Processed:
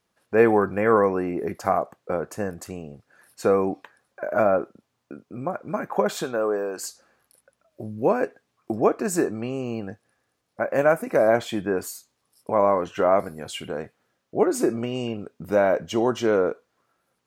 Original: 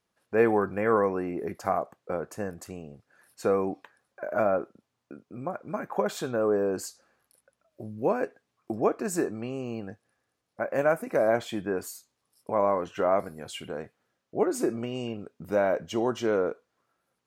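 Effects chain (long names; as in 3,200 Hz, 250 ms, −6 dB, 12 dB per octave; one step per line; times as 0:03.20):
0:06.23–0:06.82: high-pass filter 320 Hz → 1,200 Hz 6 dB per octave
level +5 dB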